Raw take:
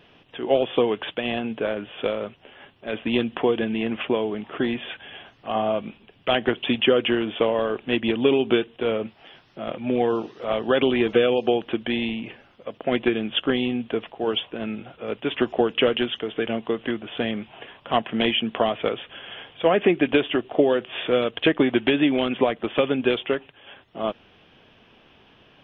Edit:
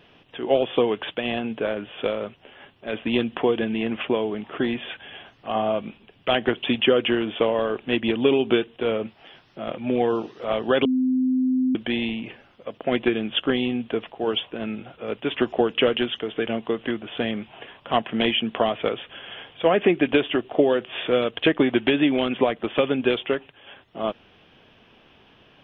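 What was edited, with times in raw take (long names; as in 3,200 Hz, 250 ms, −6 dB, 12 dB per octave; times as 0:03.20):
0:10.85–0:11.75: beep over 257 Hz −18 dBFS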